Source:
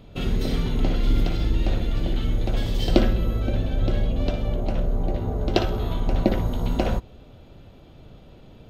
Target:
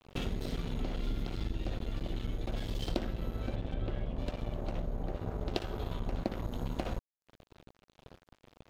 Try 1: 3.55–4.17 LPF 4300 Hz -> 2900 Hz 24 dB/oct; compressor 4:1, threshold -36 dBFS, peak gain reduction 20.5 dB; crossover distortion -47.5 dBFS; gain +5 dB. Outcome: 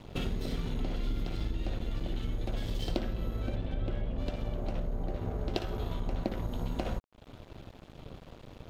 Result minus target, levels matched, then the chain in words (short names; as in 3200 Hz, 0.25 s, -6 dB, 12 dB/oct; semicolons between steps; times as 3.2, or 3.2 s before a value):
crossover distortion: distortion -6 dB
3.55–4.17 LPF 4300 Hz -> 2900 Hz 24 dB/oct; compressor 4:1, threshold -36 dBFS, peak gain reduction 20.5 dB; crossover distortion -41 dBFS; gain +5 dB